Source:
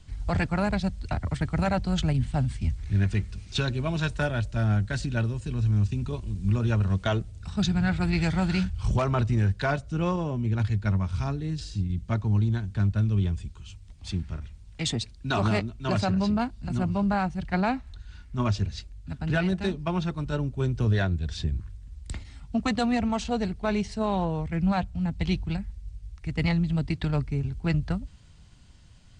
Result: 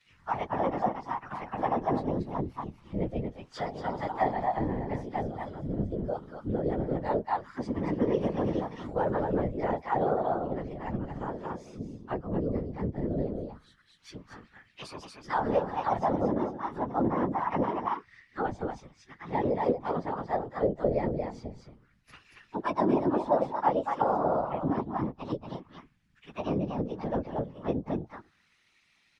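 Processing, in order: frequency-domain pitch shifter +4.5 st; delay 232 ms -5 dB; auto-wah 500–2400 Hz, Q 2.7, down, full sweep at -22 dBFS; whisper effect; trim +8.5 dB

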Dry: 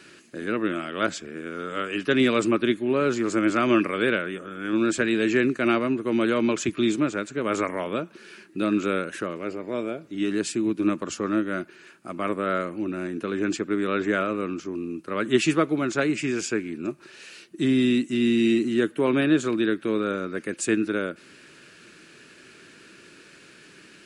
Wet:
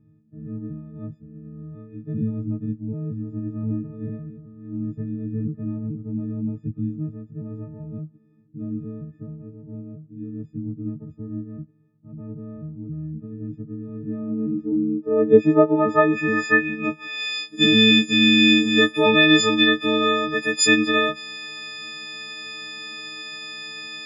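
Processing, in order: partials quantised in pitch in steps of 6 st; low-pass sweep 130 Hz -> 4.1 kHz, 13.93–17.39 s; trim +3.5 dB

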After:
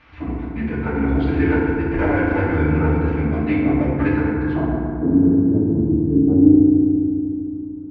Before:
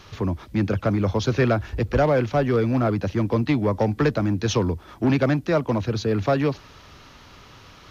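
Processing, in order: formant-preserving pitch shift -7 st; low-pass sweep 2.2 kHz -> 290 Hz, 4.28–5.12 s; FDN reverb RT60 2.5 s, low-frequency decay 1.45×, high-frequency decay 0.4×, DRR -6.5 dB; trim -8 dB

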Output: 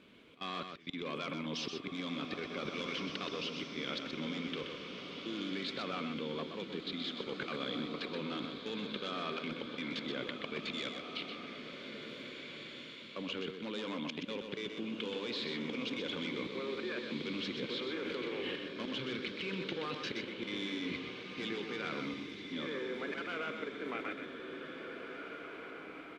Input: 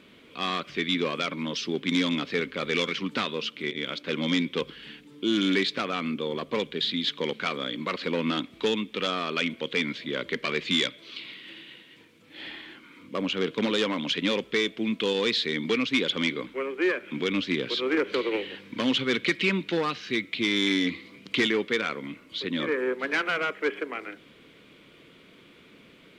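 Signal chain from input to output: slow attack 250 ms; treble shelf 7.3 kHz -7.5 dB; band-stop 1.9 kHz, Q 16; level held to a coarse grid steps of 21 dB; on a send: delay 126 ms -6.5 dB; on the sum: swelling reverb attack 2010 ms, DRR 4.5 dB; trim +2 dB

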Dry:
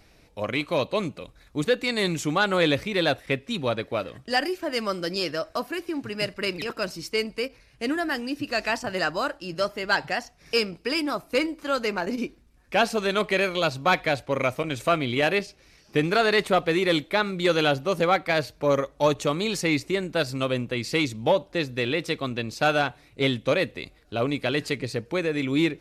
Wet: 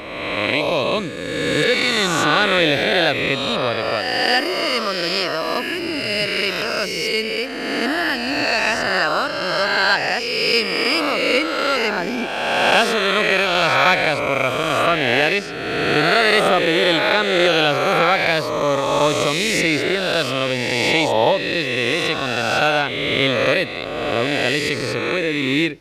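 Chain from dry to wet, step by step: reverse spectral sustain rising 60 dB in 2.08 s; dynamic bell 3.1 kHz, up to +4 dB, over -35 dBFS, Q 0.77; trim +1 dB

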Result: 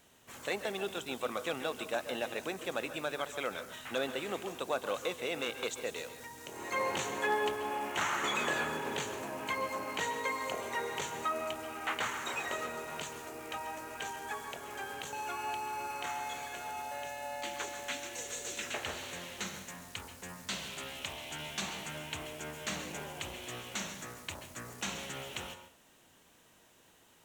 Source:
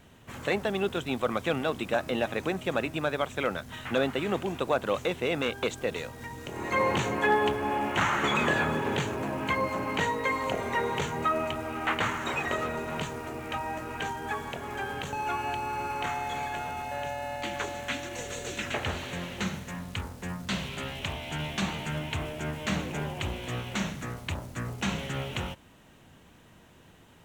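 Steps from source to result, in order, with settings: tone controls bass -10 dB, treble +9 dB; on a send: reverberation, pre-delay 123 ms, DRR 9.5 dB; on the sum: trim -7 dB

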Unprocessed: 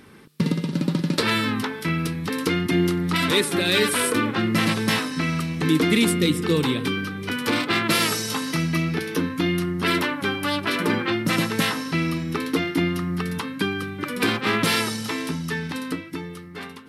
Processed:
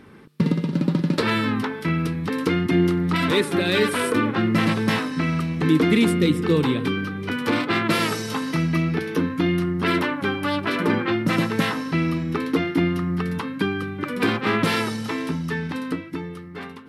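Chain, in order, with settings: treble shelf 3.3 kHz -11.5 dB; trim +2 dB

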